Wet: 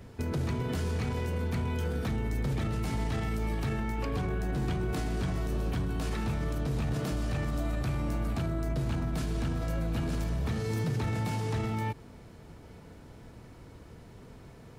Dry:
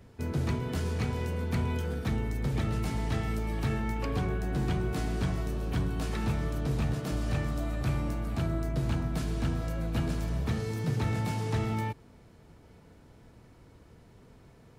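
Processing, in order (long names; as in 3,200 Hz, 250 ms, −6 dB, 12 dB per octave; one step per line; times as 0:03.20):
brickwall limiter −29.5 dBFS, peak gain reduction 8.5 dB
level +5.5 dB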